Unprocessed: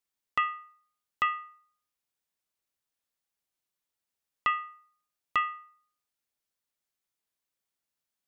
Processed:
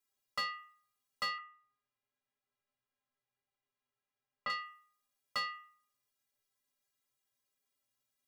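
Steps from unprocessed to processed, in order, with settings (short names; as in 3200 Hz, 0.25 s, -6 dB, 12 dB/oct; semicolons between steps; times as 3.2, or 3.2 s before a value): soft clip -29.5 dBFS, distortion -7 dB; 1.38–4.5 LPF 2500 Hz 12 dB/oct; metallic resonator 120 Hz, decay 0.23 s, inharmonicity 0.03; gain +10.5 dB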